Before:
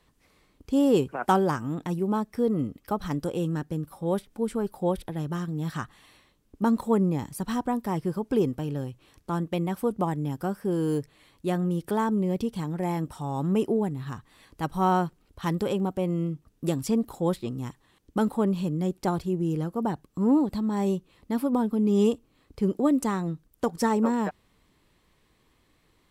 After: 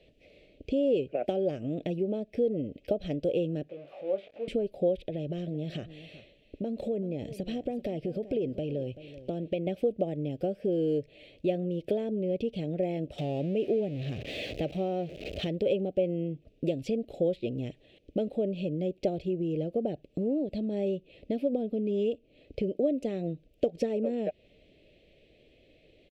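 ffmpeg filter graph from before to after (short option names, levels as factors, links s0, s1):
-filter_complex "[0:a]asettb=1/sr,asplit=3[s0][s1][s2];[s0]atrim=end=3.694[s3];[s1]atrim=start=3.69:end=4.48,asetpts=PTS-STARTPTS,afade=t=in:d=0.004:c=qsin,afade=t=out:st=0.786:d=0.004:c=qsin,aeval=exprs='val(0)+0.5*0.0188*sgn(val(0))':c=same,bandpass=f=1100:t=q:w=3.3,asplit=2[s4][s5];[s5]adelay=21,volume=0.473[s6];[s4][s6]amix=inputs=2:normalize=0,atrim=end_sample=34839[s7];[s2]atrim=start=4.476[s8];[s3][s7]acrossfade=d=0.004:c1=hsin:c2=qsin[s9];[s9][s8]acrossfade=d=0.004:c1=qsin:c2=hsin,asettb=1/sr,asplit=3[s10][s11][s12];[s10]atrim=end=4.994[s13];[s11]atrim=start=4.99:end=9.67,asetpts=PTS-STARTPTS,afade=t=in:d=0.004:c=qsin,afade=t=out:st=4.676:d=0.004:c=qsin,acompressor=threshold=0.0251:ratio=6:attack=3.2:release=140:knee=1:detection=peak,aecho=1:1:384:0.15,atrim=end_sample=206388[s14];[s12]atrim=start=9.666[s15];[s13][s14]acrossfade=d=0.004:c1=hsin:c2=qsin[s16];[s16][s15]acrossfade=d=0.004:c1=qsin:c2=hsin,asettb=1/sr,asplit=3[s17][s18][s19];[s17]atrim=end=13.184[s20];[s18]atrim=start=13.18:end=15.47,asetpts=PTS-STARTPTS,afade=t=in:d=0.004:c=qsin,afade=t=out:st=2.286:d=0.004:c=qsin,aeval=exprs='val(0)+0.5*0.0178*sgn(val(0))':c=same,highpass=56[s21];[s19]atrim=start=15.466[s22];[s20][s21]acrossfade=d=0.004:c1=hsin:c2=qsin[s23];[s23][s22]acrossfade=d=0.004:c1=qsin:c2=hsin,highshelf=f=4600:g=-8,acompressor=threshold=0.0224:ratio=6,firequalizer=gain_entry='entry(200,0);entry(610,14);entry(960,-27);entry(2500,10);entry(5100,-3);entry(9300,-13)':delay=0.05:min_phase=1,volume=1.26"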